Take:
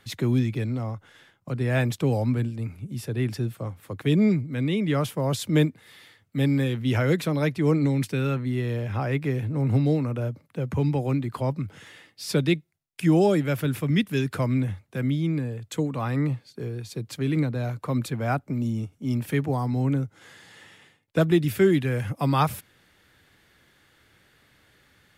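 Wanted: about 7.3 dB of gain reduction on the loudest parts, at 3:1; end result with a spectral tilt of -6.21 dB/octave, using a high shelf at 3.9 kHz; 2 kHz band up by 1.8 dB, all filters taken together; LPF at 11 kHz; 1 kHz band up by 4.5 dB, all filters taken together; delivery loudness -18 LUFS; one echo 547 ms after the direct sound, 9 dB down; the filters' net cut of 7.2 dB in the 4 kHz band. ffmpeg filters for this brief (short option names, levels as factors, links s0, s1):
-af "lowpass=11000,equalizer=f=1000:t=o:g=6,equalizer=f=2000:t=o:g=3.5,highshelf=f=3900:g=-7.5,equalizer=f=4000:t=o:g=-6.5,acompressor=threshold=0.0631:ratio=3,aecho=1:1:547:0.355,volume=3.55"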